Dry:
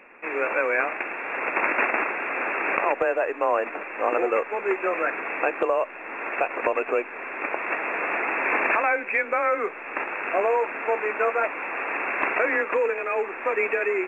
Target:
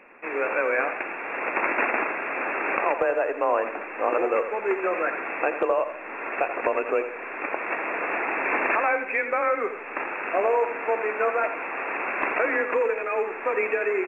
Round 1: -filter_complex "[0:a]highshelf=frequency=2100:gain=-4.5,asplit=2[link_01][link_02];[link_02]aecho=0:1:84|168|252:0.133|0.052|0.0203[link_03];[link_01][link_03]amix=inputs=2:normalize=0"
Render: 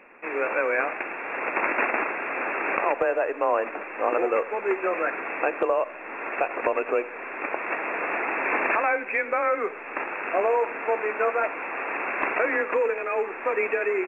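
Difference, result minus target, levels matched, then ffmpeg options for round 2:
echo-to-direct −7.5 dB
-filter_complex "[0:a]highshelf=frequency=2100:gain=-4.5,asplit=2[link_01][link_02];[link_02]aecho=0:1:84|168|252|336:0.316|0.123|0.0481|0.0188[link_03];[link_01][link_03]amix=inputs=2:normalize=0"

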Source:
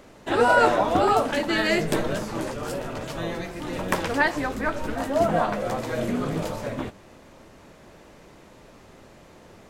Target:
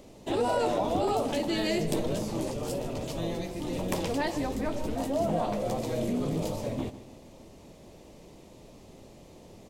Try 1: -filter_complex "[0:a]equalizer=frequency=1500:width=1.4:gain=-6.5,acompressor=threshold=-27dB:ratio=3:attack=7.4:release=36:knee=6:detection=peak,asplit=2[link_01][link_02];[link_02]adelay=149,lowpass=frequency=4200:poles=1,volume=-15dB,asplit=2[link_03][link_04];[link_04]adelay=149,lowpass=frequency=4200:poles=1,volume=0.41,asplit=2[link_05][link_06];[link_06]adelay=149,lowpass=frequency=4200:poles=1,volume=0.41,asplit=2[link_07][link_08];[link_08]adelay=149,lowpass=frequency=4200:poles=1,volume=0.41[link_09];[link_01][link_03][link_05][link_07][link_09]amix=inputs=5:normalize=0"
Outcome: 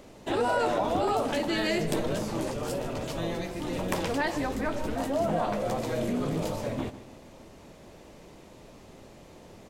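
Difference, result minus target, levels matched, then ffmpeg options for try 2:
2,000 Hz band +4.5 dB
-filter_complex "[0:a]equalizer=frequency=1500:width=1.4:gain=-16,acompressor=threshold=-27dB:ratio=3:attack=7.4:release=36:knee=6:detection=peak,asplit=2[link_01][link_02];[link_02]adelay=149,lowpass=frequency=4200:poles=1,volume=-15dB,asplit=2[link_03][link_04];[link_04]adelay=149,lowpass=frequency=4200:poles=1,volume=0.41,asplit=2[link_05][link_06];[link_06]adelay=149,lowpass=frequency=4200:poles=1,volume=0.41,asplit=2[link_07][link_08];[link_08]adelay=149,lowpass=frequency=4200:poles=1,volume=0.41[link_09];[link_01][link_03][link_05][link_07][link_09]amix=inputs=5:normalize=0"

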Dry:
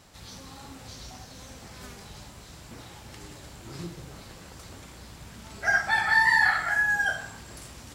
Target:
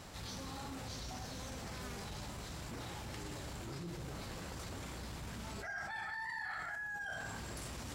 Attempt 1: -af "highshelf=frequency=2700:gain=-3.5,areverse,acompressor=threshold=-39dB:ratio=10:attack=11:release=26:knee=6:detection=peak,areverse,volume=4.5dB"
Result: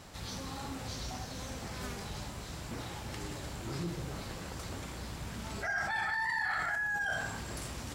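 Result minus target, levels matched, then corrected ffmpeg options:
downward compressor: peak gain reduction −9 dB
-af "highshelf=frequency=2700:gain=-3.5,areverse,acompressor=threshold=-49dB:ratio=10:attack=11:release=26:knee=6:detection=peak,areverse,volume=4.5dB"

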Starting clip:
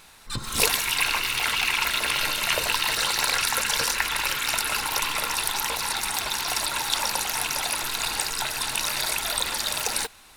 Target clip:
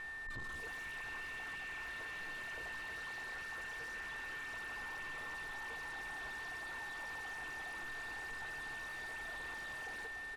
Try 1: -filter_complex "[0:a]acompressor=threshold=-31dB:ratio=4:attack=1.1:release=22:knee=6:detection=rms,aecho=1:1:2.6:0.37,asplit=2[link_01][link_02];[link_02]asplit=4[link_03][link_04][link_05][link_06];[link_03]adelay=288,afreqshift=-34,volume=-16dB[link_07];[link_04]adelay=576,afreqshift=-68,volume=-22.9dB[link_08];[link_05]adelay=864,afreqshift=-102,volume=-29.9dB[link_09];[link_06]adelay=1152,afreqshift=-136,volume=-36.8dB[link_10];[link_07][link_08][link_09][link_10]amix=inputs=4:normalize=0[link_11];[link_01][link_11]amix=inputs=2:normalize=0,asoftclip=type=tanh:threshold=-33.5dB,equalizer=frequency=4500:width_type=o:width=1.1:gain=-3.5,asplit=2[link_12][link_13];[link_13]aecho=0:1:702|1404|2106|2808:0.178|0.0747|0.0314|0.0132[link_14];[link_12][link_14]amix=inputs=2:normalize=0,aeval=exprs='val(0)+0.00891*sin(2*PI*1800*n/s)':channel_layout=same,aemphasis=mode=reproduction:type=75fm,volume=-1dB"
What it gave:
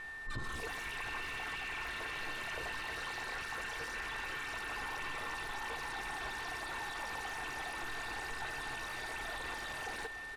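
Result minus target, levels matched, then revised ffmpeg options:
soft clipping: distortion −6 dB
-filter_complex "[0:a]acompressor=threshold=-31dB:ratio=4:attack=1.1:release=22:knee=6:detection=rms,aecho=1:1:2.6:0.37,asplit=2[link_01][link_02];[link_02]asplit=4[link_03][link_04][link_05][link_06];[link_03]adelay=288,afreqshift=-34,volume=-16dB[link_07];[link_04]adelay=576,afreqshift=-68,volume=-22.9dB[link_08];[link_05]adelay=864,afreqshift=-102,volume=-29.9dB[link_09];[link_06]adelay=1152,afreqshift=-136,volume=-36.8dB[link_10];[link_07][link_08][link_09][link_10]amix=inputs=4:normalize=0[link_11];[link_01][link_11]amix=inputs=2:normalize=0,asoftclip=type=tanh:threshold=-44dB,equalizer=frequency=4500:width_type=o:width=1.1:gain=-3.5,asplit=2[link_12][link_13];[link_13]aecho=0:1:702|1404|2106|2808:0.178|0.0747|0.0314|0.0132[link_14];[link_12][link_14]amix=inputs=2:normalize=0,aeval=exprs='val(0)+0.00891*sin(2*PI*1800*n/s)':channel_layout=same,aemphasis=mode=reproduction:type=75fm,volume=-1dB"

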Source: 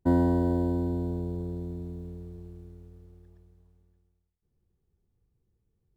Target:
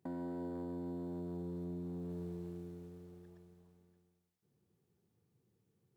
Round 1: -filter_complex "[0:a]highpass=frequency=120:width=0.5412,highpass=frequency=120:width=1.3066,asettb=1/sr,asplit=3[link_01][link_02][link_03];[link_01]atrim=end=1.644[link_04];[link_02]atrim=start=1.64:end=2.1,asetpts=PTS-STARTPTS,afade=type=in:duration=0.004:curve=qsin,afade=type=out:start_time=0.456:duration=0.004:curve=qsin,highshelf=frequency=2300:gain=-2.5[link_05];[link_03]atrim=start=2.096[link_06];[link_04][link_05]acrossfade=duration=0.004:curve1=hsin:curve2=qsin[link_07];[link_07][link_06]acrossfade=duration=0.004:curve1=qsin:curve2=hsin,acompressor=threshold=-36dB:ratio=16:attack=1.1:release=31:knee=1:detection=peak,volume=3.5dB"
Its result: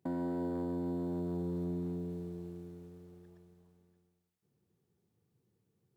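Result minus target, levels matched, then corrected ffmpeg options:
downward compressor: peak gain reduction −6 dB
-filter_complex "[0:a]highpass=frequency=120:width=0.5412,highpass=frequency=120:width=1.3066,asettb=1/sr,asplit=3[link_01][link_02][link_03];[link_01]atrim=end=1.644[link_04];[link_02]atrim=start=1.64:end=2.1,asetpts=PTS-STARTPTS,afade=type=in:duration=0.004:curve=qsin,afade=type=out:start_time=0.456:duration=0.004:curve=qsin,highshelf=frequency=2300:gain=-2.5[link_05];[link_03]atrim=start=2.096[link_06];[link_04][link_05]acrossfade=duration=0.004:curve1=hsin:curve2=qsin[link_07];[link_07][link_06]acrossfade=duration=0.004:curve1=qsin:curve2=hsin,acompressor=threshold=-42.5dB:ratio=16:attack=1.1:release=31:knee=1:detection=peak,volume=3.5dB"

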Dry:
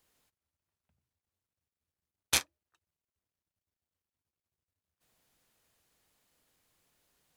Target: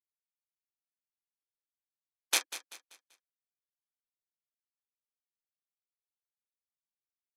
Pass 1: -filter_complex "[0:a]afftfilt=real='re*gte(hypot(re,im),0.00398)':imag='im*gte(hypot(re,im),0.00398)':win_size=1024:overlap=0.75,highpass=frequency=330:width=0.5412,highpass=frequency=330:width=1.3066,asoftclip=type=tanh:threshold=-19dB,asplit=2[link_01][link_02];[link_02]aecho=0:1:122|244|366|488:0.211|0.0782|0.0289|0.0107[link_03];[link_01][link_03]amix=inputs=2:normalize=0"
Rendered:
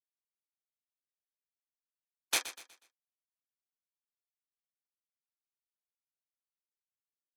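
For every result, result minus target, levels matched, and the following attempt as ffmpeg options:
soft clipping: distortion +12 dB; echo 71 ms early
-filter_complex "[0:a]afftfilt=real='re*gte(hypot(re,im),0.00398)':imag='im*gte(hypot(re,im),0.00398)':win_size=1024:overlap=0.75,highpass=frequency=330:width=0.5412,highpass=frequency=330:width=1.3066,asoftclip=type=tanh:threshold=-8.5dB,asplit=2[link_01][link_02];[link_02]aecho=0:1:122|244|366|488:0.211|0.0782|0.0289|0.0107[link_03];[link_01][link_03]amix=inputs=2:normalize=0"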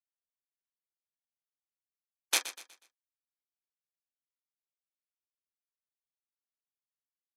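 echo 71 ms early
-filter_complex "[0:a]afftfilt=real='re*gte(hypot(re,im),0.00398)':imag='im*gte(hypot(re,im),0.00398)':win_size=1024:overlap=0.75,highpass=frequency=330:width=0.5412,highpass=frequency=330:width=1.3066,asoftclip=type=tanh:threshold=-8.5dB,asplit=2[link_01][link_02];[link_02]aecho=0:1:193|386|579|772:0.211|0.0782|0.0289|0.0107[link_03];[link_01][link_03]amix=inputs=2:normalize=0"

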